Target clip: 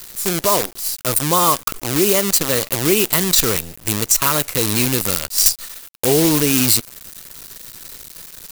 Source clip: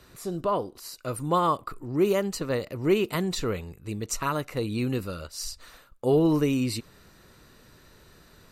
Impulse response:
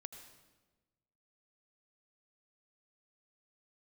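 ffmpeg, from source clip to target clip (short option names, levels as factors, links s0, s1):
-af "acrusher=bits=6:dc=4:mix=0:aa=0.000001,crystalizer=i=4:c=0,alimiter=limit=0.282:level=0:latency=1:release=145,volume=2.82"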